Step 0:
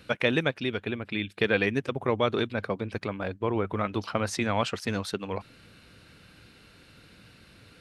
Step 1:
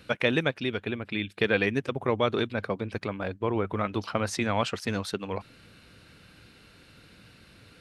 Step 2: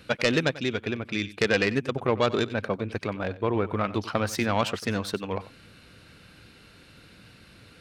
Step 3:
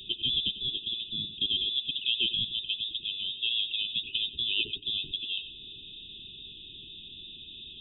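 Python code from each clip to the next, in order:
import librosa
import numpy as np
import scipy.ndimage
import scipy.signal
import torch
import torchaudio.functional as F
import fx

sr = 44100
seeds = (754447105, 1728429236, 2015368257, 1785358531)

y1 = x
y2 = fx.self_delay(y1, sr, depth_ms=0.13)
y2 = y2 + 10.0 ** (-17.0 / 20.0) * np.pad(y2, (int(93 * sr / 1000.0), 0))[:len(y2)]
y2 = y2 * librosa.db_to_amplitude(2.0)
y3 = y2 + 0.5 * 10.0 ** (-33.5 / 20.0) * np.sign(y2)
y3 = fx.freq_invert(y3, sr, carrier_hz=3700)
y3 = fx.brickwall_bandstop(y3, sr, low_hz=440.0, high_hz=2500.0)
y3 = y3 * librosa.db_to_amplitude(-5.5)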